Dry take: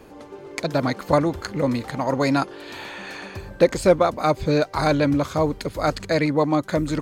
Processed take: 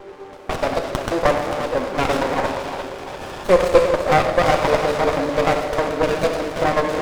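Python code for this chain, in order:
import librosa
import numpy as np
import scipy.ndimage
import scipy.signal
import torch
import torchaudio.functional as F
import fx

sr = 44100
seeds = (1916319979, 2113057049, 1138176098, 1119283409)

p1 = fx.block_reorder(x, sr, ms=123.0, group=4)
p2 = scipy.signal.sosfilt(scipy.signal.butter(2, 530.0, 'highpass', fs=sr, output='sos'), p1)
p3 = fx.high_shelf(p2, sr, hz=9000.0, db=-10.0)
p4 = p3 + fx.echo_feedback(p3, sr, ms=347, feedback_pct=50, wet_db=-10.0, dry=0)
p5 = fx.rev_gated(p4, sr, seeds[0], gate_ms=420, shape='falling', drr_db=1.5)
p6 = fx.running_max(p5, sr, window=17)
y = F.gain(torch.from_numpy(p6), 5.5).numpy()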